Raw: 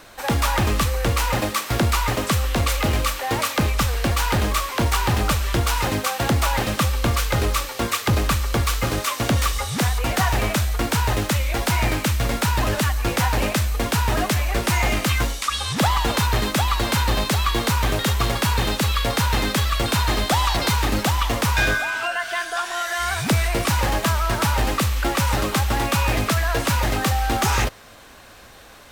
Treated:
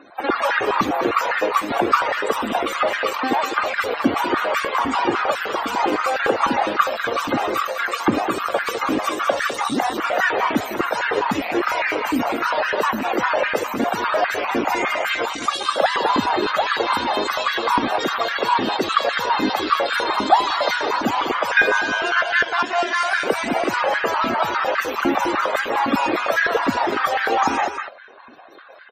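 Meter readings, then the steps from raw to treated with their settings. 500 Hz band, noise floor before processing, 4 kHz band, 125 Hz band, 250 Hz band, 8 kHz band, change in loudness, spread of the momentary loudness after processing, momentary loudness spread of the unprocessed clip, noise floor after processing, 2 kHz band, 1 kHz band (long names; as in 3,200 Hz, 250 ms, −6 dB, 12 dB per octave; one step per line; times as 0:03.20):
+5.0 dB, −35 dBFS, −2.0 dB, −19.5 dB, +1.0 dB, −10.0 dB, +1.0 dB, 4 LU, 3 LU, −30 dBFS, +4.0 dB, +5.0 dB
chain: harmonic generator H 3 −37 dB, 6 −43 dB, 7 −39 dB, 8 −9 dB, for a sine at −13.5 dBFS
spectral peaks only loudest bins 64
on a send: single-tap delay 203 ms −8 dB
on the sum: high-pass on a step sequencer 9.9 Hz 270–1,600 Hz
level −1 dB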